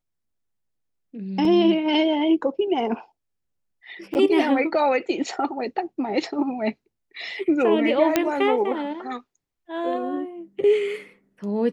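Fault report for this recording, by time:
1.45 gap 2.8 ms
4.14–4.15 gap 9.4 ms
8.16 pop -4 dBFS

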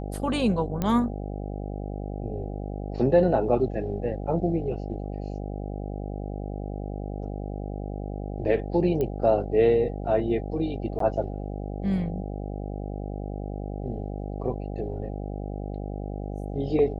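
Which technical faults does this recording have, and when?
buzz 50 Hz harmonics 16 -33 dBFS
0.82 pop -14 dBFS
9.01 pop -17 dBFS
10.99–11 gap 13 ms

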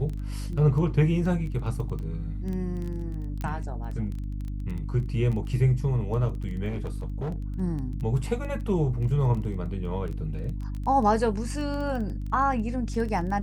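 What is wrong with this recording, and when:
crackle 11/s -32 dBFS
hum 50 Hz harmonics 6 -32 dBFS
3.41 pop -20 dBFS
6.68–7.38 clipped -27 dBFS

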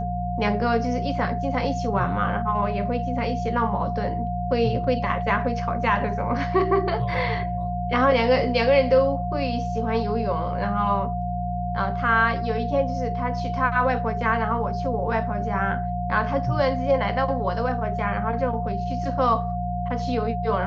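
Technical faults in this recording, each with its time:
hum 60 Hz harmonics 3 -29 dBFS
tone 710 Hz -28 dBFS

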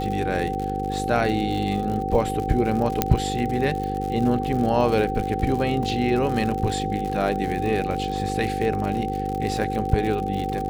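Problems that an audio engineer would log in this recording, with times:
buzz 50 Hz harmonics 10 -29 dBFS
crackle 93/s -28 dBFS
tone 770 Hz -27 dBFS
3.02 pop -3 dBFS
5.83 gap 2.3 ms

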